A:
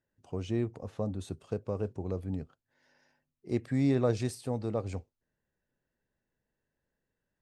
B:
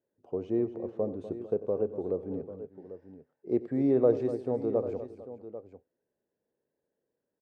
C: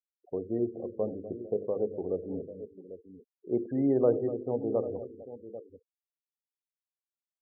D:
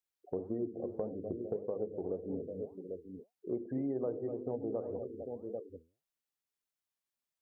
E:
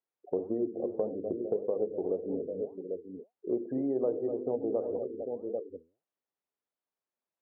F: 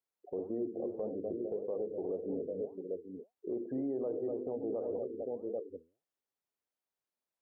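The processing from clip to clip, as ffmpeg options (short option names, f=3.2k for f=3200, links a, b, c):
-af "bandpass=f=440:t=q:w=1.7:csg=0,aecho=1:1:92|246|451|794:0.141|0.224|0.112|0.211,volume=7dB"
-af "bandreject=f=50:t=h:w=6,bandreject=f=100:t=h:w=6,bandreject=f=150:t=h:w=6,bandreject=f=200:t=h:w=6,bandreject=f=250:t=h:w=6,bandreject=f=300:t=h:w=6,bandreject=f=350:t=h:w=6,bandreject=f=400:t=h:w=6,bandreject=f=450:t=h:w=6,bandreject=f=500:t=h:w=6,afftfilt=real='re*gte(hypot(re,im),0.00794)':imag='im*gte(hypot(re,im),0.00794)':win_size=1024:overlap=0.75"
-af "acompressor=threshold=-38dB:ratio=4,flanger=delay=3.9:depth=8.6:regen=82:speed=1.8:shape=sinusoidal,volume=7.5dB"
-af "bandpass=f=490:t=q:w=0.75:csg=0,volume=6.5dB"
-af "alimiter=level_in=2.5dB:limit=-24dB:level=0:latency=1:release=20,volume=-2.5dB,volume=-2dB"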